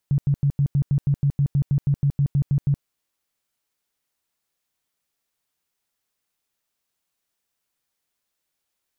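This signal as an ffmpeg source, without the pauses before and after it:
ffmpeg -f lavfi -i "aevalsrc='0.168*sin(2*PI*141*mod(t,0.16))*lt(mod(t,0.16),10/141)':duration=2.72:sample_rate=44100" out.wav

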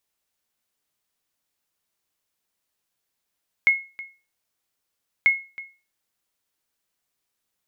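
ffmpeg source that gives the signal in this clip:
ffmpeg -f lavfi -i "aevalsrc='0.335*(sin(2*PI*2170*mod(t,1.59))*exp(-6.91*mod(t,1.59)/0.32)+0.112*sin(2*PI*2170*max(mod(t,1.59)-0.32,0))*exp(-6.91*max(mod(t,1.59)-0.32,0)/0.32))':duration=3.18:sample_rate=44100" out.wav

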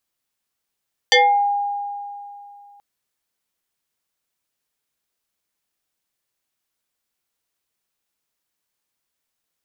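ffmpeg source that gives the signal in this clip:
ffmpeg -f lavfi -i "aevalsrc='0.355*pow(10,-3*t/2.73)*sin(2*PI*812*t+3.8*pow(10,-3*t/0.4)*sin(2*PI*1.61*812*t))':duration=1.68:sample_rate=44100" out.wav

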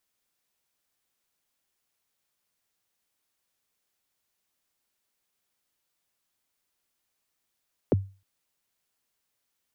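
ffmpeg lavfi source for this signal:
ffmpeg -f lavfi -i "aevalsrc='0.178*pow(10,-3*t/0.33)*sin(2*PI*(590*0.022/log(97/590)*(exp(log(97/590)*min(t,0.022)/0.022)-1)+97*max(t-0.022,0)))':duration=0.31:sample_rate=44100" out.wav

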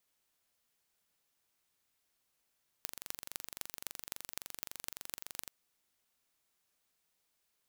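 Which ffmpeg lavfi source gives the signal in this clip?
ffmpeg -f lavfi -i "aevalsrc='0.316*eq(mod(n,1869),0)*(0.5+0.5*eq(mod(n,11214),0))':duration=2.65:sample_rate=44100" out.wav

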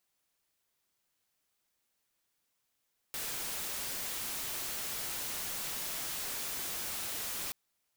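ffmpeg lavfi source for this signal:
ffmpeg -f lavfi -i "anoisesrc=color=white:amplitude=0.0218:duration=4.38:sample_rate=44100:seed=1" out.wav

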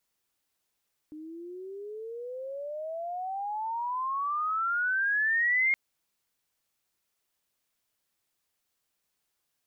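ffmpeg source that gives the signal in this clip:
ffmpeg -f lavfi -i "aevalsrc='pow(10,(-21.5+18.5*(t/4.62-1))/20)*sin(2*PI*302*4.62/(34*log(2)/12)*(exp(34*log(2)/12*t/4.62)-1))':duration=4.62:sample_rate=44100" out.wav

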